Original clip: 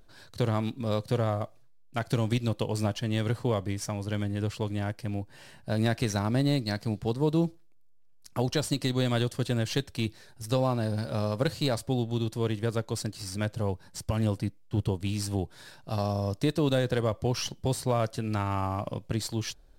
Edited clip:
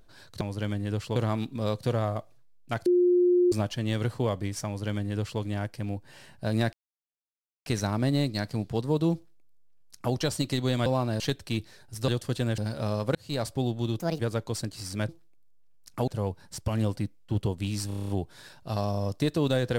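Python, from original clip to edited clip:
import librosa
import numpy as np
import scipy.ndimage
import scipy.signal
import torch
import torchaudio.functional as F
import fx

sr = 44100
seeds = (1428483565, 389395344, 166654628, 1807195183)

y = fx.edit(x, sr, fx.bleep(start_s=2.11, length_s=0.66, hz=356.0, db=-18.0),
    fx.duplicate(start_s=3.91, length_s=0.75, to_s=0.41),
    fx.insert_silence(at_s=5.98, length_s=0.93),
    fx.duplicate(start_s=7.47, length_s=0.99, to_s=13.5),
    fx.swap(start_s=9.18, length_s=0.5, other_s=10.56, other_length_s=0.34),
    fx.fade_in_span(start_s=11.47, length_s=0.3),
    fx.speed_span(start_s=12.31, length_s=0.3, speed=1.46),
    fx.stutter(start_s=15.3, slice_s=0.03, count=8), tone=tone)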